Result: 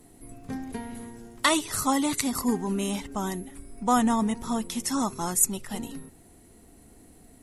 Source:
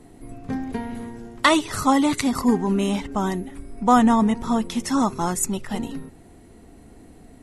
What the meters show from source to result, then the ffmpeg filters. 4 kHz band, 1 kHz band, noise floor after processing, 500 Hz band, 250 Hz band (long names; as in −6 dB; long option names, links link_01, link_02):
−3.0 dB, −6.5 dB, −54 dBFS, −7.0 dB, −7.0 dB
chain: -af "aemphasis=mode=production:type=50fm,volume=-6.5dB"